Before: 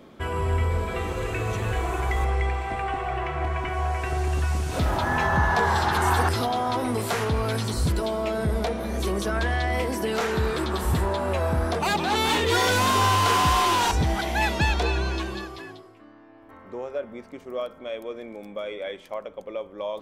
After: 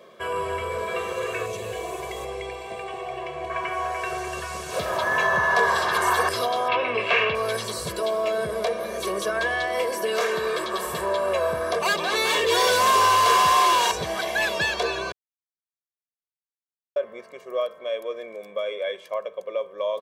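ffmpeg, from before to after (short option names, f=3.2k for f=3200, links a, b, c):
-filter_complex "[0:a]asettb=1/sr,asplit=3[a][b][c];[a]atrim=end=1.464[d];[b]atrim=start=1.46:end=3.5,asetpts=PTS-STARTPTS,afade=t=in:d=0.004:c=qsin,afade=t=out:st=2.036:d=0.004:c=qsin,equalizer=f=1.4k:w=1.3:g=-13.5[e];[c]atrim=start=3.496[f];[d][e]acrossfade=d=0.004:c1=hsin:c2=qsin[g];[g][f]acrossfade=d=0.004:c1=qsin:c2=hsin,asettb=1/sr,asplit=3[h][i][j];[h]atrim=end=6.684[k];[i]atrim=start=6.68:end=7.35,asetpts=PTS-STARTPTS,afade=t=in:d=0.004:c=qsin,afade=t=out:st=0.666:d=0.004:c=qsin,lowpass=f=2.6k:t=q:w=7.8[l];[j]atrim=start=7.346[m];[k][l]acrossfade=d=0.004:c1=hsin:c2=qsin[n];[n][m]acrossfade=d=0.004:c1=qsin:c2=hsin,asettb=1/sr,asplit=3[o][p][q];[o]atrim=end=9.644[r];[p]atrim=start=9.64:end=10.99,asetpts=PTS-STARTPTS,afade=t=in:d=0.004:c=qsin,afade=t=out:st=1.346:d=0.004:c=qsin,equalizer=f=92:t=o:w=0.8:g=-11[s];[q]atrim=start=10.986[t];[r][s]acrossfade=d=0.004:c1=hsin:c2=qsin[u];[u][t]acrossfade=d=0.004:c1=qsin:c2=hsin,asplit=3[v][w][x];[v]atrim=end=15.12,asetpts=PTS-STARTPTS,afade=t=out:st=15.116:d=0.004:c=hsin[y];[w]atrim=start=15.12:end=16.96,asetpts=PTS-STARTPTS,volume=0[z];[x]atrim=start=16.96,asetpts=PTS-STARTPTS,afade=t=in:d=0.004:c=hsin[aa];[y][z][aa]concat=n=3:v=0:a=1,highpass=290,aecho=1:1:1.8:0.86"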